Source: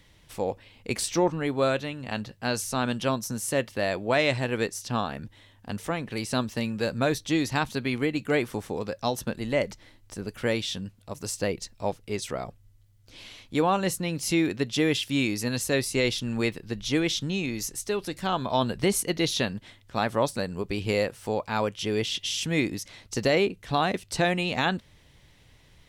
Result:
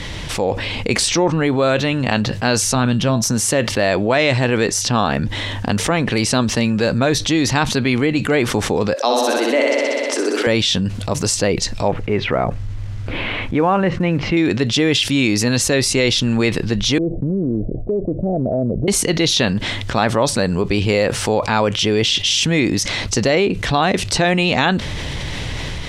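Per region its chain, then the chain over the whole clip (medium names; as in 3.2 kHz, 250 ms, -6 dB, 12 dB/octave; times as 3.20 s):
2.75–3.22 s: tone controls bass +10 dB, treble -2 dB + feedback comb 60 Hz, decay 0.24 s, harmonics odd, mix 50%
8.94–10.47 s: steep high-pass 250 Hz 96 dB/octave + flutter echo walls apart 10.8 m, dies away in 1.2 s
11.88–14.37 s: low-pass 2.4 kHz 24 dB/octave + companded quantiser 8-bit
16.98–18.88 s: companding laws mixed up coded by A + steep low-pass 670 Hz 72 dB/octave + compression 2.5:1, threshold -36 dBFS
whole clip: level rider; low-pass 7.3 kHz 12 dB/octave; level flattener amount 70%; trim -4 dB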